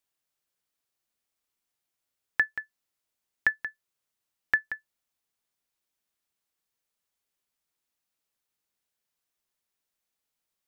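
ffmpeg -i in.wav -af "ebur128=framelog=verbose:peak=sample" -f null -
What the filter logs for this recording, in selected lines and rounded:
Integrated loudness:
  I:         -30.3 LUFS
  Threshold: -40.8 LUFS
Loudness range:
  LRA:         4.8 LU
  Threshold: -54.8 LUFS
  LRA low:   -37.3 LUFS
  LRA high:  -32.5 LUFS
Sample peak:
  Peak:      -11.2 dBFS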